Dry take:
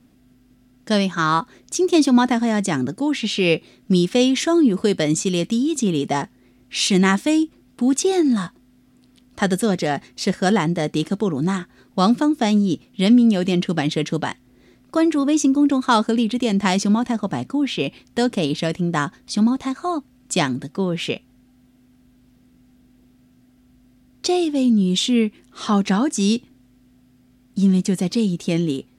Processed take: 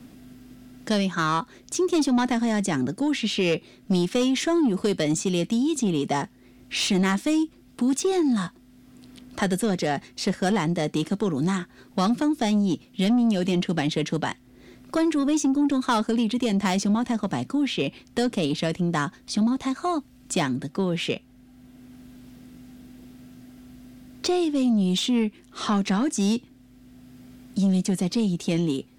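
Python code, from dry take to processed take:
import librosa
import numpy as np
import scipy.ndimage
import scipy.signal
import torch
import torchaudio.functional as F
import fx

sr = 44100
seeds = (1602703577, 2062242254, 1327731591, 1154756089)

y = 10.0 ** (-13.0 / 20.0) * np.tanh(x / 10.0 ** (-13.0 / 20.0))
y = fx.band_squash(y, sr, depth_pct=40)
y = F.gain(torch.from_numpy(y), -2.5).numpy()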